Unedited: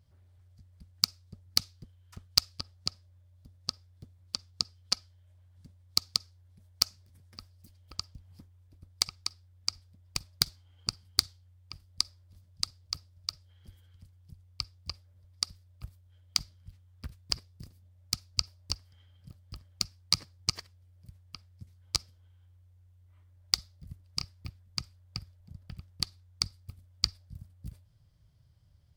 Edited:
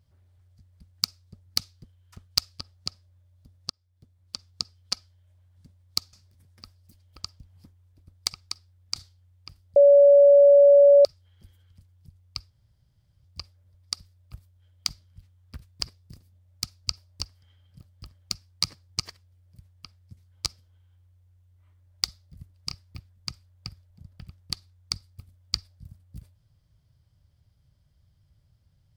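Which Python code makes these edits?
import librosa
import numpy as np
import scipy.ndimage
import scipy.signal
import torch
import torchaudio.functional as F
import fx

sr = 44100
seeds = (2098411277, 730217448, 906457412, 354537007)

y = fx.edit(x, sr, fx.fade_in_from(start_s=3.7, length_s=0.78, floor_db=-21.5),
    fx.cut(start_s=6.13, length_s=0.75),
    fx.cut(start_s=9.71, length_s=1.49),
    fx.bleep(start_s=12.0, length_s=1.29, hz=568.0, db=-10.5),
    fx.insert_room_tone(at_s=14.74, length_s=0.74), tone=tone)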